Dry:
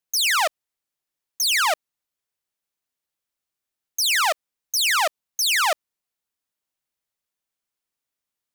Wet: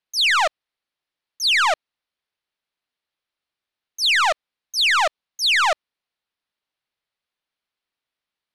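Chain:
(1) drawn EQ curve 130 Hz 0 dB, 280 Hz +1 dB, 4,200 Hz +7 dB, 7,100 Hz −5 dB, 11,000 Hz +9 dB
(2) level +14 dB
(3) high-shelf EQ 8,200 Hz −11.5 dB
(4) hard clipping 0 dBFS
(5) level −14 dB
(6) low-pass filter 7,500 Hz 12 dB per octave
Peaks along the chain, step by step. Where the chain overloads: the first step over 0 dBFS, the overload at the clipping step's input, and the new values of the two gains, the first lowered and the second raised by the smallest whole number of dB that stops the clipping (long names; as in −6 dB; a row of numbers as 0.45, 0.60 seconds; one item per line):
−6.0, +8.0, +6.5, 0.0, −14.0, −13.0 dBFS
step 2, 6.5 dB
step 2 +7 dB, step 5 −7 dB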